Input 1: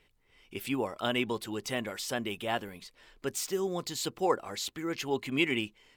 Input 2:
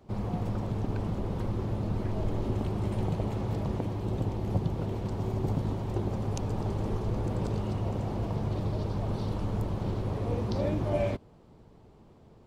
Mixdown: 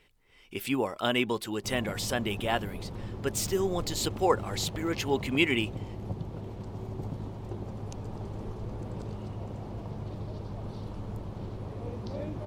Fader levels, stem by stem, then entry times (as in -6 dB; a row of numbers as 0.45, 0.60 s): +3.0, -7.0 dB; 0.00, 1.55 s